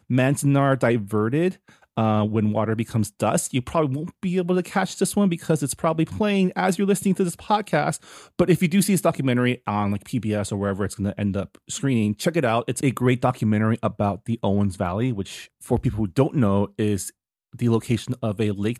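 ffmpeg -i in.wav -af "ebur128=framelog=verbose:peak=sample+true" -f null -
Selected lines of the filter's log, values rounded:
Integrated loudness:
  I:         -22.9 LUFS
  Threshold: -33.0 LUFS
Loudness range:
  LRA:         2.4 LU
  Threshold: -43.1 LUFS
  LRA low:   -24.4 LUFS
  LRA high:  -21.9 LUFS
Sample peak:
  Peak:       -5.9 dBFS
True peak:
  Peak:       -5.9 dBFS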